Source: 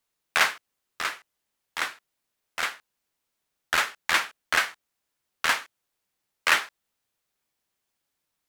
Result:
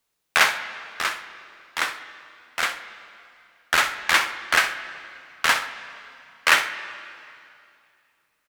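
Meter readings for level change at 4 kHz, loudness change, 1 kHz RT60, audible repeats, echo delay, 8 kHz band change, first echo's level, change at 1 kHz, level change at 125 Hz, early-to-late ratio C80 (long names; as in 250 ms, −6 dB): +4.5 dB, +4.0 dB, 2.5 s, 1, 64 ms, +4.5 dB, −13.0 dB, +4.5 dB, +5.0 dB, 12.0 dB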